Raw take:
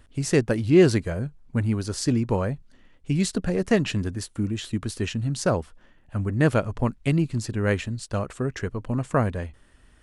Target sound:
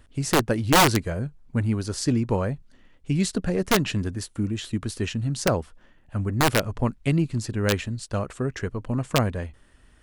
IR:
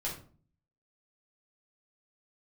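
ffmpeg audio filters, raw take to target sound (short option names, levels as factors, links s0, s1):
-af "aeval=exprs='(mod(3.55*val(0)+1,2)-1)/3.55':c=same"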